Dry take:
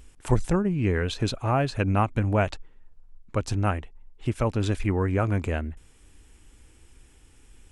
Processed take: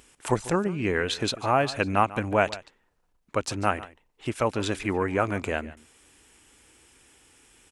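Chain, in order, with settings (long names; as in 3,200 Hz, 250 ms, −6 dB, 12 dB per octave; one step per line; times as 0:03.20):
high-pass filter 470 Hz 6 dB per octave
on a send: single-tap delay 144 ms −18 dB
on the sum: level +4.5 dB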